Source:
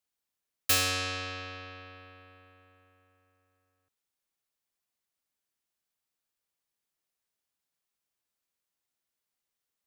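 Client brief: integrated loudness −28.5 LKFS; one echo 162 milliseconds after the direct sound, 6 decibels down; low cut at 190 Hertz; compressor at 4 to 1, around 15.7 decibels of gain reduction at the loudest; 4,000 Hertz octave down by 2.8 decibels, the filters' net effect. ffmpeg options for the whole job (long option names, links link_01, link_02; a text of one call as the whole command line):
ffmpeg -i in.wav -af "highpass=190,equalizer=frequency=4000:width_type=o:gain=-3.5,acompressor=threshold=-41dB:ratio=4,aecho=1:1:162:0.501,volume=15dB" out.wav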